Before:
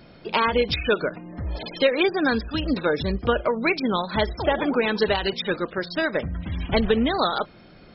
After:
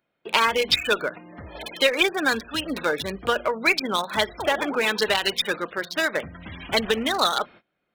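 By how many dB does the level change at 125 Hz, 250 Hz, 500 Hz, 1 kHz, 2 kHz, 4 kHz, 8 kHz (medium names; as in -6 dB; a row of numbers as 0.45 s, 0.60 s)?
-10.5 dB, -6.0 dB, -2.5 dB, +0.5 dB, +3.0 dB, +5.0 dB, no reading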